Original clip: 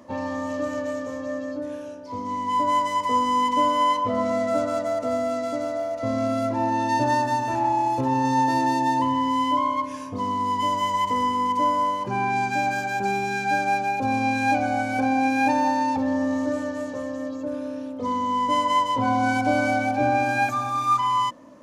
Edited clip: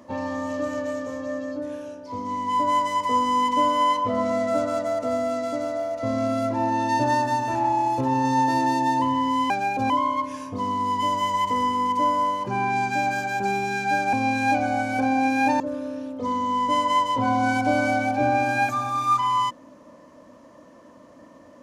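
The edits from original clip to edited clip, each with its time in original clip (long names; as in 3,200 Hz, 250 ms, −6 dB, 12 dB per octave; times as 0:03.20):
0:13.73–0:14.13: move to 0:09.50
0:15.60–0:17.40: remove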